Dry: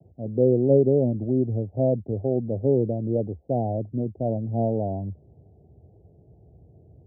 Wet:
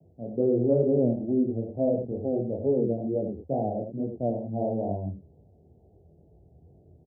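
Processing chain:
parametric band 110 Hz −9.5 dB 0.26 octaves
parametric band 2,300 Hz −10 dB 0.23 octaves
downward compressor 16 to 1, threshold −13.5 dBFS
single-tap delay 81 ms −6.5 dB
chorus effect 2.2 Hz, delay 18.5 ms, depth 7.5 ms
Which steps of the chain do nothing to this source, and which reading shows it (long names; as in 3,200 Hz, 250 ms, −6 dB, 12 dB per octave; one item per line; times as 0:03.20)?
parametric band 2,300 Hz: nothing at its input above 850 Hz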